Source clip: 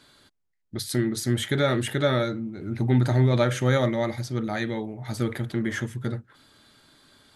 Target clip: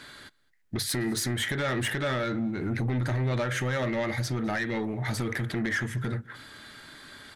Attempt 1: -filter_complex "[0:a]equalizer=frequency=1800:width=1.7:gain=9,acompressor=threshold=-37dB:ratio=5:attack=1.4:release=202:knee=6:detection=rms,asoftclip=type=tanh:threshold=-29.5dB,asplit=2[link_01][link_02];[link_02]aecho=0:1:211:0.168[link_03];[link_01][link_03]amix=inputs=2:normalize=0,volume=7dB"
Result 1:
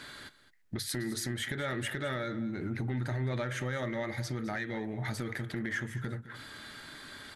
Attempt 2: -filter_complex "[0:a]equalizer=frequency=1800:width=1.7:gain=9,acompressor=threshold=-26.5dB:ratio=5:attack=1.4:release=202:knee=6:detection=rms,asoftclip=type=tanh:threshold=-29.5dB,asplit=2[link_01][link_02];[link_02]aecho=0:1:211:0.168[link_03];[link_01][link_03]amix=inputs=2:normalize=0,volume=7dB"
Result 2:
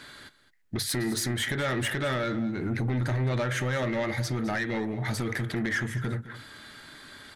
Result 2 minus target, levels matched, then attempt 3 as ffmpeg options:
echo-to-direct +10.5 dB
-filter_complex "[0:a]equalizer=frequency=1800:width=1.7:gain=9,acompressor=threshold=-26.5dB:ratio=5:attack=1.4:release=202:knee=6:detection=rms,asoftclip=type=tanh:threshold=-29.5dB,asplit=2[link_01][link_02];[link_02]aecho=0:1:211:0.0501[link_03];[link_01][link_03]amix=inputs=2:normalize=0,volume=7dB"

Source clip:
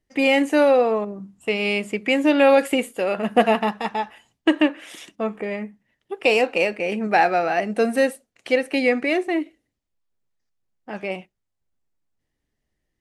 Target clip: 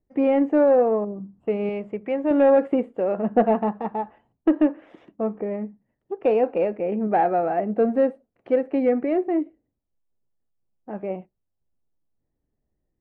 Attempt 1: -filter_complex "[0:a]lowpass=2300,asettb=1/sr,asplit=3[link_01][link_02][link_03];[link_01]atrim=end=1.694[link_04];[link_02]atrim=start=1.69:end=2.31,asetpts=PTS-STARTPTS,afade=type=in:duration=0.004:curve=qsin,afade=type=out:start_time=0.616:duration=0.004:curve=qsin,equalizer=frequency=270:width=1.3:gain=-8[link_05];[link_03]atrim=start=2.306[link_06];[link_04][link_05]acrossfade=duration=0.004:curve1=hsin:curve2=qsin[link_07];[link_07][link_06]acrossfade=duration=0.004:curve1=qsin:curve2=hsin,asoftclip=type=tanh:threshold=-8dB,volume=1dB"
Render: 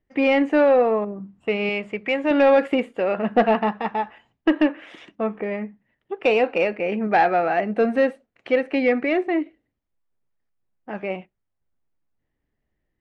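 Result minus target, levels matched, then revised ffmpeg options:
2,000 Hz band +11.5 dB
-filter_complex "[0:a]lowpass=790,asettb=1/sr,asplit=3[link_01][link_02][link_03];[link_01]atrim=end=1.694[link_04];[link_02]atrim=start=1.69:end=2.31,asetpts=PTS-STARTPTS,afade=type=in:duration=0.004:curve=qsin,afade=type=out:start_time=0.616:duration=0.004:curve=qsin,equalizer=frequency=270:width=1.3:gain=-8[link_05];[link_03]atrim=start=2.306[link_06];[link_04][link_05]acrossfade=duration=0.004:curve1=hsin:curve2=qsin[link_07];[link_07][link_06]acrossfade=duration=0.004:curve1=qsin:curve2=hsin,asoftclip=type=tanh:threshold=-8dB,volume=1dB"

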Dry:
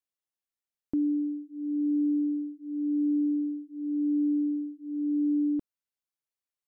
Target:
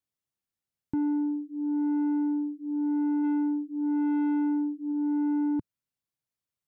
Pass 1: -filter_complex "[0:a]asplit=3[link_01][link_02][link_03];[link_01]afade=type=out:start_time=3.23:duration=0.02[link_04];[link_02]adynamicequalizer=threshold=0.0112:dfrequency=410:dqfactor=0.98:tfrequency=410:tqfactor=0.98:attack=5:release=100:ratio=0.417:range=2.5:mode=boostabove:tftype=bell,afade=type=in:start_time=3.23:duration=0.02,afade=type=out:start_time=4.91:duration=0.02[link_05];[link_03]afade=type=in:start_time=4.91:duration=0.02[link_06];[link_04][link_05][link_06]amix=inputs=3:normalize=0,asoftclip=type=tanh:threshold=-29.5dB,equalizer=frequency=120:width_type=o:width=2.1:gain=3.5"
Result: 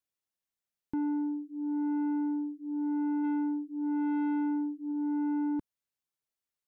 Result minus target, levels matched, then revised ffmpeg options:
125 Hz band −4.5 dB
-filter_complex "[0:a]asplit=3[link_01][link_02][link_03];[link_01]afade=type=out:start_time=3.23:duration=0.02[link_04];[link_02]adynamicequalizer=threshold=0.0112:dfrequency=410:dqfactor=0.98:tfrequency=410:tqfactor=0.98:attack=5:release=100:ratio=0.417:range=2.5:mode=boostabove:tftype=bell,afade=type=in:start_time=3.23:duration=0.02,afade=type=out:start_time=4.91:duration=0.02[link_05];[link_03]afade=type=in:start_time=4.91:duration=0.02[link_06];[link_04][link_05][link_06]amix=inputs=3:normalize=0,asoftclip=type=tanh:threshold=-29.5dB,equalizer=frequency=120:width_type=o:width=2.1:gain=13"

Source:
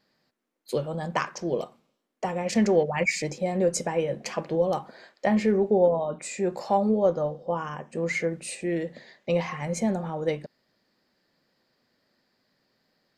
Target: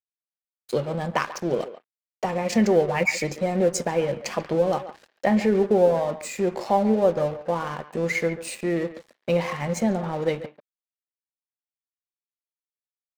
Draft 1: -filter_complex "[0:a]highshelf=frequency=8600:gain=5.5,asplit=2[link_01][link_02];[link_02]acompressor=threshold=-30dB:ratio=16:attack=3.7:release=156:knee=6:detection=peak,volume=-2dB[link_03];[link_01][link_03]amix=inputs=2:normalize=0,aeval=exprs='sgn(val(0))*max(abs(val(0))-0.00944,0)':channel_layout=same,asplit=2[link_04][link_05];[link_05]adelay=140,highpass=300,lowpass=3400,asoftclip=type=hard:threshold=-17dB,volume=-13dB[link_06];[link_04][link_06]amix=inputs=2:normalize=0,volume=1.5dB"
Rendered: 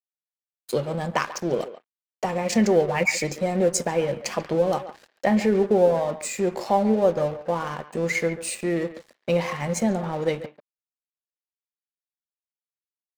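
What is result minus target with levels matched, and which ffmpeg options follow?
8,000 Hz band +4.0 dB
-filter_complex "[0:a]highshelf=frequency=8600:gain=-5.5,asplit=2[link_01][link_02];[link_02]acompressor=threshold=-30dB:ratio=16:attack=3.7:release=156:knee=6:detection=peak,volume=-2dB[link_03];[link_01][link_03]amix=inputs=2:normalize=0,aeval=exprs='sgn(val(0))*max(abs(val(0))-0.00944,0)':channel_layout=same,asplit=2[link_04][link_05];[link_05]adelay=140,highpass=300,lowpass=3400,asoftclip=type=hard:threshold=-17dB,volume=-13dB[link_06];[link_04][link_06]amix=inputs=2:normalize=0,volume=1.5dB"

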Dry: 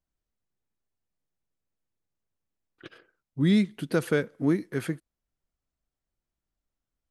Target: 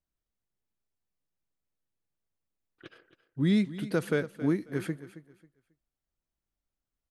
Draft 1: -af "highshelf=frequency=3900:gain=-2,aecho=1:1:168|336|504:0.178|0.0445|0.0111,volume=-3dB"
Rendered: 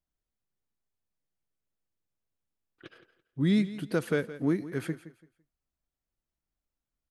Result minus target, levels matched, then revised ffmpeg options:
echo 103 ms early
-af "highshelf=frequency=3900:gain=-2,aecho=1:1:271|542|813:0.178|0.0445|0.0111,volume=-3dB"

